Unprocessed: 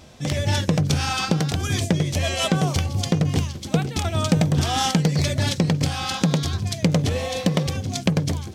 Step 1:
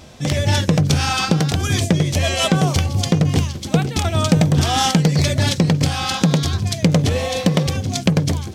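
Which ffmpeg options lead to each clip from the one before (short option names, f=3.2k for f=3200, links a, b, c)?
-af "acontrast=21"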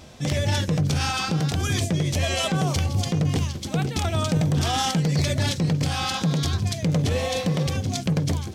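-af "alimiter=limit=-11dB:level=0:latency=1:release=38,volume=-3.5dB"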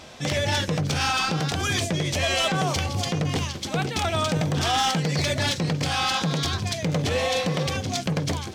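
-filter_complex "[0:a]asplit=2[a][b];[b]highpass=f=720:p=1,volume=11dB,asoftclip=type=tanh:threshold=-14dB[c];[a][c]amix=inputs=2:normalize=0,lowpass=f=4.7k:p=1,volume=-6dB"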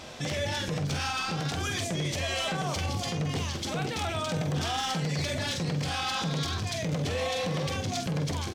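-filter_complex "[0:a]alimiter=limit=-24dB:level=0:latency=1:release=32,asplit=2[a][b];[b]adelay=47,volume=-8dB[c];[a][c]amix=inputs=2:normalize=0"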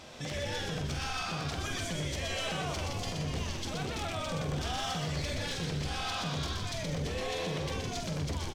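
-filter_complex "[0:a]asplit=7[a][b][c][d][e][f][g];[b]adelay=123,afreqshift=-82,volume=-4dB[h];[c]adelay=246,afreqshift=-164,volume=-10.4dB[i];[d]adelay=369,afreqshift=-246,volume=-16.8dB[j];[e]adelay=492,afreqshift=-328,volume=-23.1dB[k];[f]adelay=615,afreqshift=-410,volume=-29.5dB[l];[g]adelay=738,afreqshift=-492,volume=-35.9dB[m];[a][h][i][j][k][l][m]amix=inputs=7:normalize=0,volume=-6dB"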